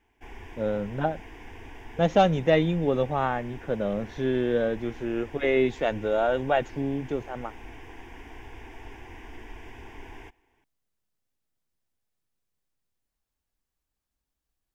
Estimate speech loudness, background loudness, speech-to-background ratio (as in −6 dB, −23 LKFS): −26.5 LKFS, −46.0 LKFS, 19.5 dB